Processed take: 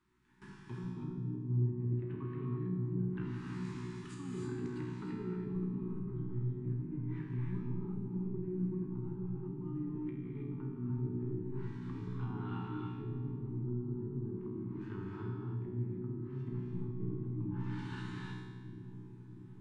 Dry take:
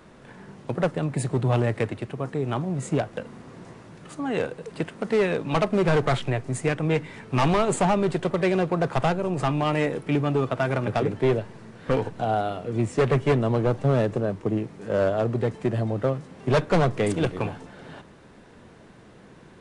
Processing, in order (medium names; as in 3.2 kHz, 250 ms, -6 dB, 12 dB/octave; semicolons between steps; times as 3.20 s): gate with hold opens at -35 dBFS; elliptic band-stop 380–900 Hz, stop band 40 dB; low-pass that closes with the level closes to 330 Hz, closed at -25 dBFS; reverse; compression 6:1, threshold -38 dBFS, peak gain reduction 17.5 dB; reverse; feedback comb 61 Hz, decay 1.3 s, harmonics all, mix 90%; feedback echo behind a low-pass 638 ms, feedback 71%, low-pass 580 Hz, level -10 dB; gated-style reverb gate 350 ms rising, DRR 0 dB; trim +10 dB